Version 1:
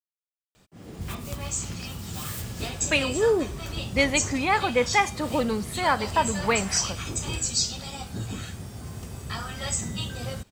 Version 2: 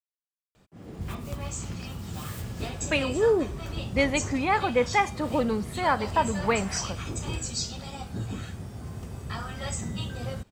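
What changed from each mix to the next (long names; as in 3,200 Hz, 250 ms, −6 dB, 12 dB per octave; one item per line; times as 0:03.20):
master: add high-shelf EQ 2,600 Hz −8.5 dB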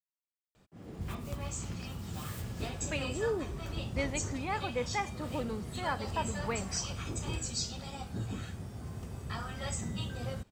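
speech −11.0 dB
background −4.0 dB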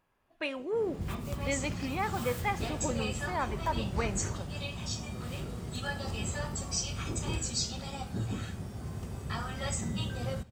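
speech: entry −2.50 s
reverb: on, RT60 0.55 s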